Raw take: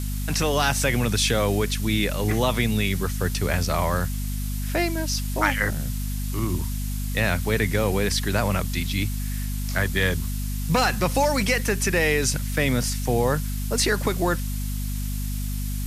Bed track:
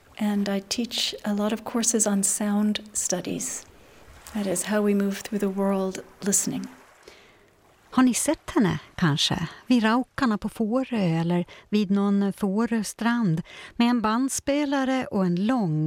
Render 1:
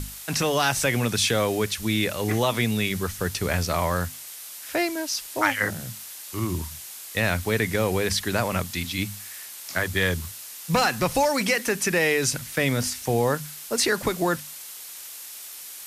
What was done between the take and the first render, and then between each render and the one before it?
hum notches 50/100/150/200/250 Hz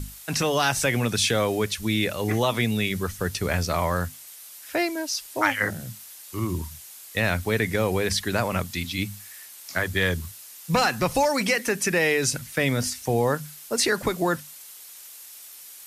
noise reduction 6 dB, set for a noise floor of -40 dBFS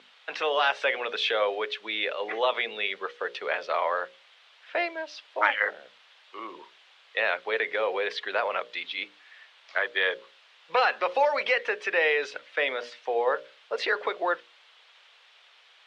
elliptic band-pass 470–3400 Hz, stop band 80 dB; hum notches 60/120/180/240/300/360/420/480/540/600 Hz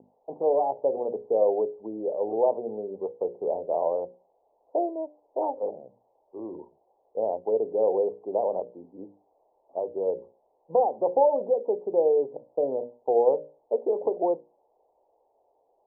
steep low-pass 890 Hz 72 dB/octave; tilt EQ -5.5 dB/octave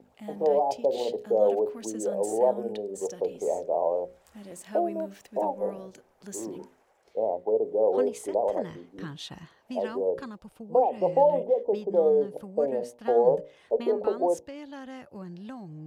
add bed track -17.5 dB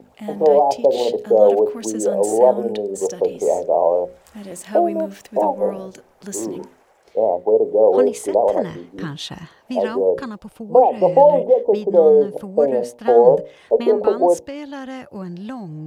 trim +10 dB; peak limiter -1 dBFS, peak gain reduction 1 dB

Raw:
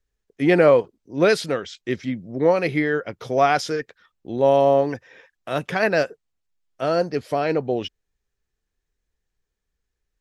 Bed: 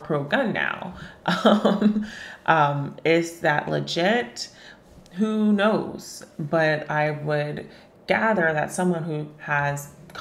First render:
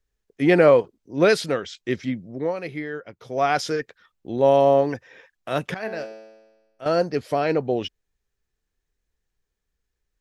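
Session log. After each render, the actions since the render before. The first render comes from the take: 2.11–3.66 s: dip -9.5 dB, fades 0.41 s; 5.74–6.86 s: feedback comb 110 Hz, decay 1.2 s, mix 80%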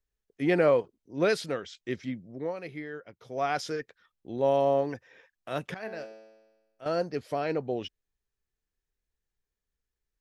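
trim -8 dB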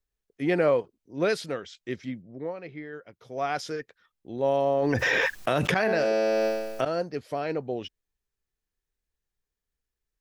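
2.22–2.93 s: distance through air 160 m; 4.77–6.85 s: level flattener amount 100%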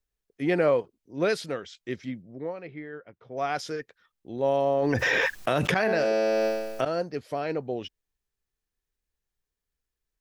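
2.62–3.36 s: low-pass 4.1 kHz -> 1.8 kHz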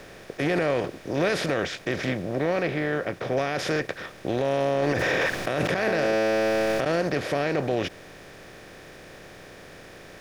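spectral levelling over time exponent 0.4; peak limiter -14.5 dBFS, peak gain reduction 11.5 dB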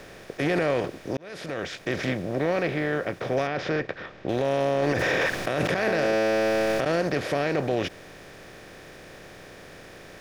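1.17–1.94 s: fade in; 3.47–4.29 s: distance through air 180 m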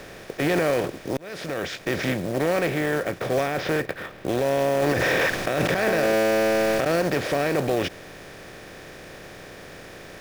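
in parallel at -6 dB: one-sided clip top -31 dBFS; on the sum: short-mantissa float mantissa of 2-bit

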